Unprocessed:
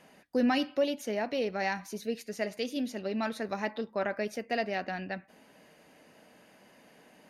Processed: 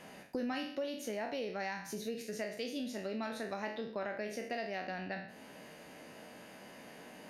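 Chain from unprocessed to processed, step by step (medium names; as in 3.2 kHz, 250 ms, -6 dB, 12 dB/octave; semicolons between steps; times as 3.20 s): spectral sustain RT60 0.46 s; compression 3:1, threshold -45 dBFS, peak gain reduction 16.5 dB; trim +4.5 dB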